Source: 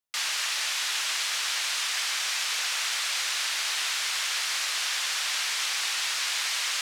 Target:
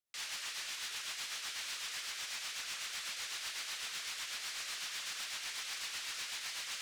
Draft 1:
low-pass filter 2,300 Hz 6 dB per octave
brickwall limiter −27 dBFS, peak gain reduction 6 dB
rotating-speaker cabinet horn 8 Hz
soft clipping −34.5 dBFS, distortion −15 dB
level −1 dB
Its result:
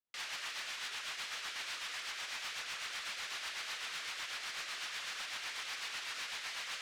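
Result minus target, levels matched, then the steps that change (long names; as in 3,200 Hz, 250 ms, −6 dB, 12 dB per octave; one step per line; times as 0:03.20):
2,000 Hz band +2.5 dB
remove: low-pass filter 2,300 Hz 6 dB per octave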